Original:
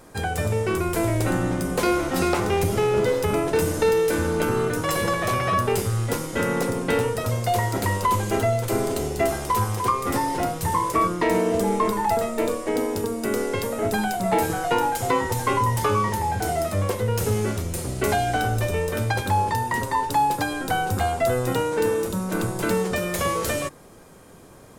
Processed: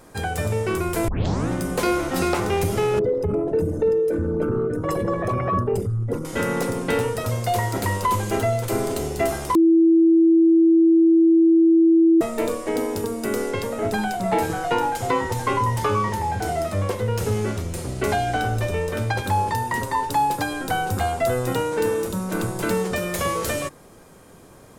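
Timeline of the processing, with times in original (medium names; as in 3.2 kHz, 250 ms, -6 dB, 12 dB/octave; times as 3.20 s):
1.08 s: tape start 0.41 s
2.99–6.25 s: resonances exaggerated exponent 2
9.55–12.21 s: bleep 329 Hz -11.5 dBFS
13.51–19.24 s: treble shelf 9.4 kHz -9 dB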